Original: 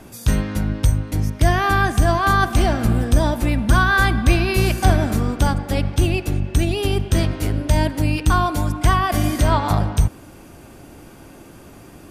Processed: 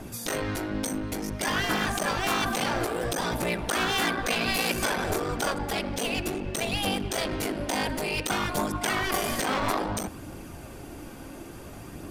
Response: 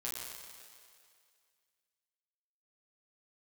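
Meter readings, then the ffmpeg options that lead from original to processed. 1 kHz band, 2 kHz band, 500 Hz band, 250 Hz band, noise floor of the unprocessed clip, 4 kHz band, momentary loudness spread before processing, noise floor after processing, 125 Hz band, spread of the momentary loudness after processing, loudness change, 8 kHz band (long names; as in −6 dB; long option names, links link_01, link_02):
−8.0 dB, −6.5 dB, −6.0 dB, −9.0 dB, −43 dBFS, −1.0 dB, 5 LU, −42 dBFS, −18.0 dB, 17 LU, −9.0 dB, −1.5 dB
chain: -af "aeval=exprs='clip(val(0),-1,0.0596)':channel_layout=same,afftfilt=real='re*lt(hypot(re,im),0.316)':imag='im*lt(hypot(re,im),0.316)':win_size=1024:overlap=0.75,aphaser=in_gain=1:out_gain=1:delay=4.1:decay=0.25:speed=0.58:type=triangular"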